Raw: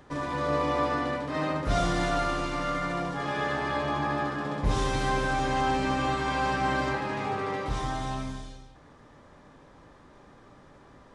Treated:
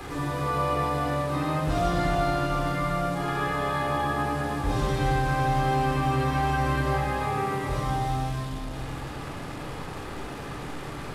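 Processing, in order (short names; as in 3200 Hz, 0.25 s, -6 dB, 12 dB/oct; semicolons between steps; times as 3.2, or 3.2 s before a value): delta modulation 64 kbps, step -36 dBFS; bell 6100 Hz -3 dB 0.6 oct; reverb RT60 1.9 s, pre-delay 3 ms, DRR -1.5 dB; three-band squash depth 40%; gain -6 dB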